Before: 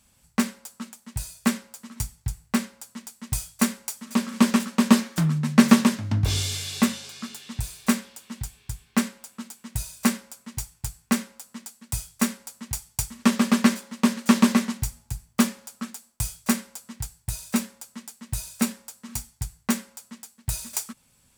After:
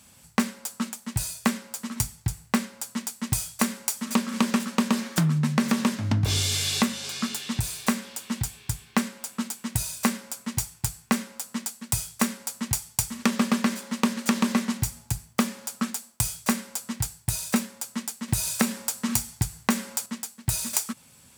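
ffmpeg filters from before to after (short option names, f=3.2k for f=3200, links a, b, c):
-filter_complex "[0:a]asplit=3[a][b][c];[a]atrim=end=18.282[d];[b]atrim=start=18.278:end=20.062,asetpts=PTS-STARTPTS,volume=7dB[e];[c]atrim=start=20.058[f];[d][e]acrossfade=d=0.004:c1=hsin:c2=hsin[g];[g][f]acrossfade=d=0.004:c1=hsin:c2=hsin,alimiter=limit=-10dB:level=0:latency=1:release=148,highpass=87,acompressor=threshold=-31dB:ratio=3,volume=8.5dB"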